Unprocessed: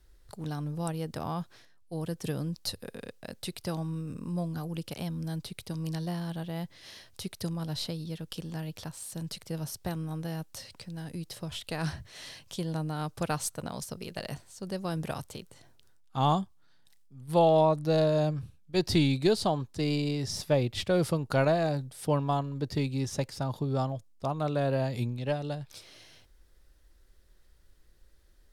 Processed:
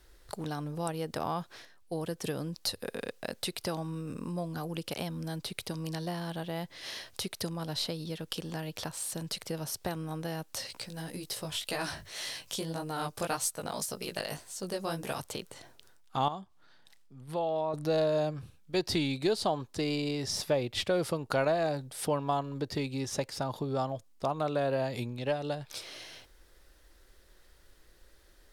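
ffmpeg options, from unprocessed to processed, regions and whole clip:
ffmpeg -i in.wav -filter_complex "[0:a]asettb=1/sr,asplit=3[link_01][link_02][link_03];[link_01]atrim=end=10.674[link_04];[link_02]atrim=start=10.67:end=15.2,asetpts=PTS-STARTPTS,afade=type=in:duration=0.004:curve=qsin,afade=type=out:start_time=4.526:duration=0.004:curve=qsin,highshelf=frequency=6100:gain=8,flanger=delay=15:depth=5:speed=1.8[link_05];[link_03]atrim=start=15.196[link_06];[link_04][link_05]acrossfade=duration=0.004:curve1=hsin:curve2=qsin[link_07];[link_07][link_06]acrossfade=duration=0.004:curve1=qsin:curve2=hsin,asettb=1/sr,asplit=3[link_08][link_09][link_10];[link_08]atrim=end=16.284[link_11];[link_09]atrim=start=16.28:end=17.74,asetpts=PTS-STARTPTS,afade=type=in:duration=0.004:curve=qsin,afade=type=out:start_time=1.456:duration=0.004:curve=qsin,highshelf=frequency=7200:gain=-8.5,acompressor=threshold=-53dB:ratio=1.5:attack=3.2:release=140:knee=1:detection=peak[link_12];[link_10]atrim=start=17.736[link_13];[link_11][link_12]acrossfade=duration=0.004:curve1=hsin:curve2=qsin[link_14];[link_14][link_13]acrossfade=duration=0.004:curve1=qsin:curve2=hsin,acompressor=threshold=-40dB:ratio=2,bass=frequency=250:gain=-9,treble=frequency=4000:gain=-2,volume=8.5dB" out.wav

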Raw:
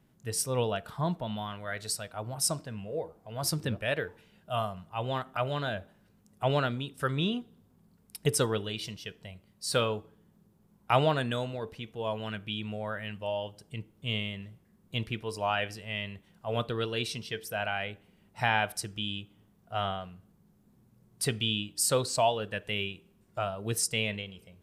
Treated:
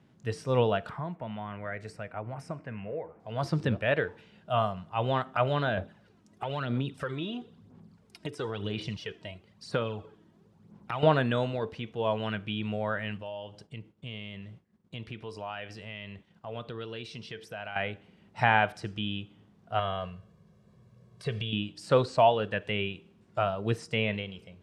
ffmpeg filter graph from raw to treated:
ffmpeg -i in.wav -filter_complex "[0:a]asettb=1/sr,asplit=3[link_01][link_02][link_03];[link_01]atrim=end=0.894[link_04];[link_02]atrim=start=0.89:end=3.2,asetpts=PTS-STARTPTS,afade=type=in:duration=0.004:curve=qsin,afade=type=out:start_time=2.306:duration=0.004:curve=qsin,acrossover=split=720|5000[link_05][link_06][link_07];[link_05]acompressor=threshold=-41dB:ratio=4[link_08];[link_06]acompressor=threshold=-48dB:ratio=4[link_09];[link_07]acompressor=threshold=-41dB:ratio=4[link_10];[link_08][link_09][link_10]amix=inputs=3:normalize=0,highshelf=frequency=2900:width_type=q:width=3:gain=-9[link_11];[link_03]atrim=start=3.196[link_12];[link_04][link_11]acrossfade=duration=0.004:curve1=hsin:curve2=qsin[link_13];[link_13][link_12]acrossfade=duration=0.004:curve1=qsin:curve2=hsin,asettb=1/sr,asplit=3[link_14][link_15][link_16];[link_14]atrim=end=5.774[link_17];[link_15]atrim=start=5.77:end=11.03,asetpts=PTS-STARTPTS,afade=type=in:duration=0.004:curve=qsin,afade=type=out:start_time=5.256:duration=0.004:curve=qsin,highpass=59,acompressor=threshold=-35dB:ratio=6:attack=3.2:release=140:knee=1:detection=peak,aphaser=in_gain=1:out_gain=1:delay=3.2:decay=0.53:speed=1:type=sinusoidal[link_18];[link_16]atrim=start=11.026[link_19];[link_17][link_18]acrossfade=duration=0.004:curve1=hsin:curve2=qsin[link_20];[link_20][link_19]acrossfade=duration=0.004:curve1=qsin:curve2=hsin,asettb=1/sr,asplit=3[link_21][link_22][link_23];[link_21]atrim=end=13.184[link_24];[link_22]atrim=start=13.18:end=17.76,asetpts=PTS-STARTPTS,afade=type=in:duration=0.004:curve=qsin,afade=type=out:start_time=4.576:duration=0.004:curve=qsin,acompressor=threshold=-45dB:ratio=2.5:attack=3.2:release=140:knee=1:detection=peak,agate=range=-33dB:threshold=-57dB:ratio=3:release=100:detection=peak[link_25];[link_23]atrim=start=17.756[link_26];[link_24][link_25]acrossfade=duration=0.004:curve1=hsin:curve2=qsin[link_27];[link_27][link_26]acrossfade=duration=0.004:curve1=qsin:curve2=hsin,asettb=1/sr,asplit=3[link_28][link_29][link_30];[link_28]atrim=end=19.794[link_31];[link_29]atrim=start=19.79:end=21.53,asetpts=PTS-STARTPTS,afade=type=in:duration=0.004:curve=qsin,afade=type=out:start_time=1.736:duration=0.004:curve=qsin,acompressor=threshold=-35dB:ratio=2.5:attack=3.2:release=140:knee=1:detection=peak,aecho=1:1:1.8:0.81,atrim=end_sample=76734[link_32];[link_30]atrim=start=21.526[link_33];[link_31][link_32]acrossfade=duration=0.004:curve1=hsin:curve2=qsin[link_34];[link_34][link_33]acrossfade=duration=0.004:curve1=qsin:curve2=hsin,highpass=77,acrossover=split=2600[link_35][link_36];[link_36]acompressor=threshold=-46dB:ratio=4:attack=1:release=60[link_37];[link_35][link_37]amix=inputs=2:normalize=0,lowpass=5200,volume=4.5dB" out.wav

